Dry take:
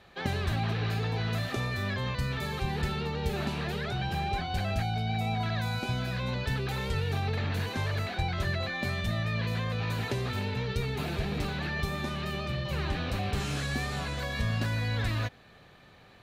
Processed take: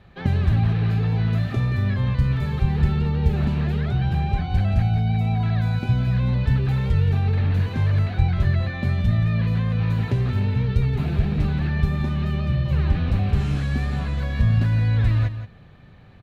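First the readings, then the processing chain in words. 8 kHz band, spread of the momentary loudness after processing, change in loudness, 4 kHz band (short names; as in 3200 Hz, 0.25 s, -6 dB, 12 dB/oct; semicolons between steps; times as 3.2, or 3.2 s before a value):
n/a, 4 LU, +9.5 dB, -3.5 dB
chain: tone controls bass +13 dB, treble -9 dB; echo 0.175 s -11.5 dB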